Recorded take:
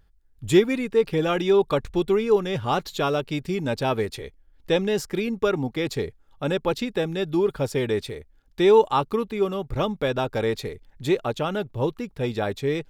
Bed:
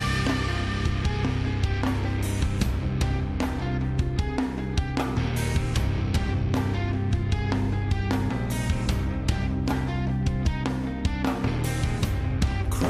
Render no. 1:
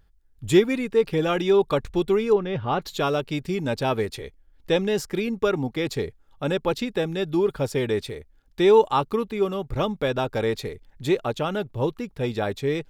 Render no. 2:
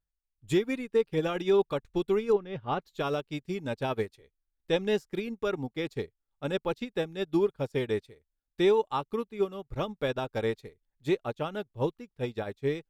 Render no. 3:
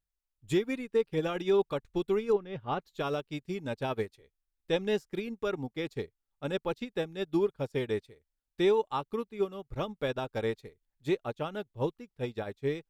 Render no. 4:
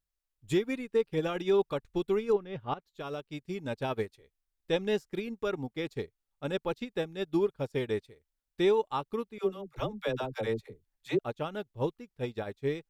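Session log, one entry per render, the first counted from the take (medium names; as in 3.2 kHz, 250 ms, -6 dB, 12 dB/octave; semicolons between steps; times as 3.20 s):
2.33–2.82 s: distance through air 260 m
peak limiter -15.5 dBFS, peak gain reduction 9.5 dB; upward expansion 2.5:1, over -38 dBFS
trim -2 dB
2.74–3.67 s: fade in, from -13.5 dB; 9.38–11.19 s: phase dispersion lows, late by 65 ms, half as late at 470 Hz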